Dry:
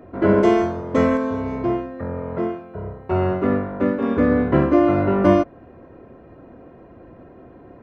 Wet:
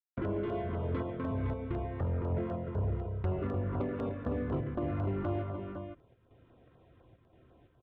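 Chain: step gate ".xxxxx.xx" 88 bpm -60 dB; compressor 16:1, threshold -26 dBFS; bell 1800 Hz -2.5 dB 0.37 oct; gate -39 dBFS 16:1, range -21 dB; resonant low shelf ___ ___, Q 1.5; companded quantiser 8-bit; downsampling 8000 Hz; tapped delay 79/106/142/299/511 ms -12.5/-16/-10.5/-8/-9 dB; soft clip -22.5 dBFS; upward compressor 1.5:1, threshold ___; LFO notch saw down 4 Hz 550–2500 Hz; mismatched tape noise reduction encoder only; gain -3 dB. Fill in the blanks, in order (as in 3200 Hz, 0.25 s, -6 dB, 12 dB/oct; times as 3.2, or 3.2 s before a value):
160 Hz, +7 dB, -49 dBFS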